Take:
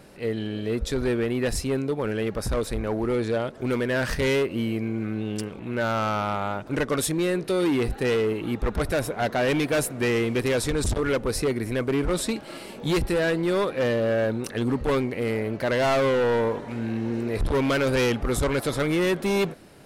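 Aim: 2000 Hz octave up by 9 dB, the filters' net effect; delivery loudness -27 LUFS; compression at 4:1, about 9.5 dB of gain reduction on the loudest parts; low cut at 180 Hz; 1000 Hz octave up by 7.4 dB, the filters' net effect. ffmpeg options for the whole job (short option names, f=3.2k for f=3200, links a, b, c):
-af "highpass=180,equalizer=f=1k:t=o:g=7,equalizer=f=2k:t=o:g=9,acompressor=threshold=-26dB:ratio=4,volume=2.5dB"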